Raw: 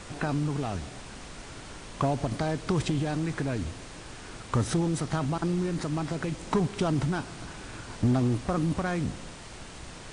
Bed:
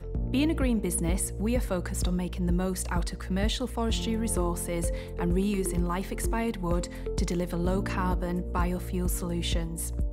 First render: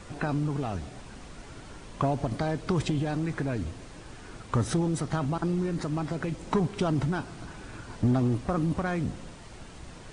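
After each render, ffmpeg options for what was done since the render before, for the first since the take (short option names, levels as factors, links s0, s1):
-af "afftdn=nr=6:nf=-44"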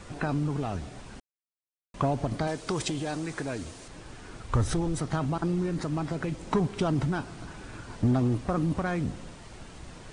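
-filter_complex "[0:a]asettb=1/sr,asplit=3[s0][s1][s2];[s0]atrim=end=2.474[s3];[s1]atrim=start=2.47:end=3.88,asetpts=PTS-STARTPTS,afade=t=in:d=0.004:c=qsin,afade=t=out:st=1.406:d=0.004:c=qsin,bass=f=250:g=-8,treble=f=4000:g=8[s4];[s2]atrim=start=3.876[s5];[s3][s4]acrossfade=d=0.004:c1=hsin:c2=qsin[s6];[s6][s5]acrossfade=d=0.004:c1=qsin:c2=hsin,asplit=3[s7][s8][s9];[s7]afade=t=out:st=4.43:d=0.02[s10];[s8]asubboost=boost=6.5:cutoff=69,afade=t=in:st=4.43:d=0.02,afade=t=out:st=4.98:d=0.02[s11];[s9]afade=t=in:st=4.98:d=0.02[s12];[s10][s11][s12]amix=inputs=3:normalize=0,asplit=3[s13][s14][s15];[s13]atrim=end=1.2,asetpts=PTS-STARTPTS,afade=t=out:st=1.196:d=0.004:c=hsin[s16];[s14]atrim=start=1.2:end=1.94,asetpts=PTS-STARTPTS,volume=0[s17];[s15]atrim=start=1.94,asetpts=PTS-STARTPTS,afade=t=in:d=0.004:c=hsin[s18];[s16][s17][s18]concat=n=3:v=0:a=1"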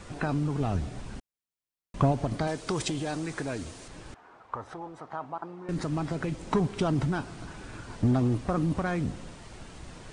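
-filter_complex "[0:a]asettb=1/sr,asplit=3[s0][s1][s2];[s0]atrim=end=0.604[s3];[s1]atrim=start=0.6:end=2.12,asetpts=PTS-STARTPTS,afade=t=in:d=0.004:c=qsin,afade=t=out:st=1.516:d=0.004:c=qsin,lowshelf=f=260:g=7[s4];[s2]atrim=start=2.116[s5];[s3][s4]acrossfade=d=0.004:c1=hsin:c2=qsin[s6];[s6][s5]acrossfade=d=0.004:c1=qsin:c2=hsin,asettb=1/sr,asplit=3[s7][s8][s9];[s7]atrim=end=4.144[s10];[s8]atrim=start=4.14:end=5.69,asetpts=PTS-STARTPTS,afade=t=in:d=0.004:c=qsin,afade=t=out:st=1.546:d=0.004:c=qsin,bandpass=f=910:t=q:w=1.8[s11];[s9]atrim=start=5.686[s12];[s10][s11]acrossfade=d=0.004:c1=hsin:c2=qsin[s13];[s13][s12]acrossfade=d=0.004:c1=qsin:c2=hsin"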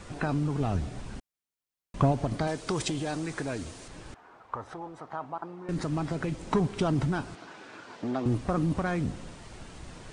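-filter_complex "[0:a]asettb=1/sr,asplit=3[s0][s1][s2];[s0]atrim=end=7.354[s3];[s1]atrim=start=7.35:end=8.26,asetpts=PTS-STARTPTS,afade=t=in:d=0.004:c=qsin,afade=t=out:st=0.906:d=0.004:c=qsin,highpass=340,lowpass=5400[s4];[s2]atrim=start=8.256[s5];[s3][s4]acrossfade=d=0.004:c1=hsin:c2=qsin[s6];[s6][s5]acrossfade=d=0.004:c1=qsin:c2=hsin"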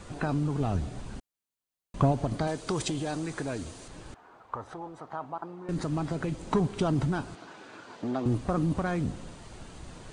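-af "equalizer=f=2100:w=1.5:g=-3,bandreject=f=5400:w=16"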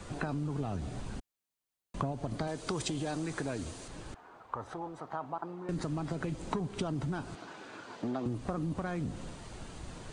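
-filter_complex "[0:a]acrossover=split=110|1800[s0][s1][s2];[s0]alimiter=level_in=3.55:limit=0.0631:level=0:latency=1,volume=0.282[s3];[s3][s1][s2]amix=inputs=3:normalize=0,acompressor=threshold=0.0282:ratio=6"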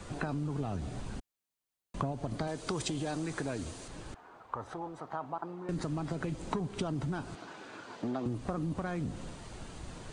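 -af anull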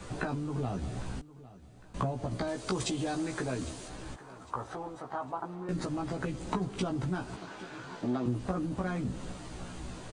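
-filter_complex "[0:a]asplit=2[s0][s1];[s1]adelay=16,volume=0.75[s2];[s0][s2]amix=inputs=2:normalize=0,aecho=1:1:805|1610|2415:0.126|0.0453|0.0163"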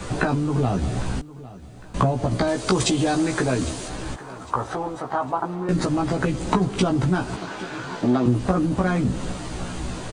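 -af "volume=3.98"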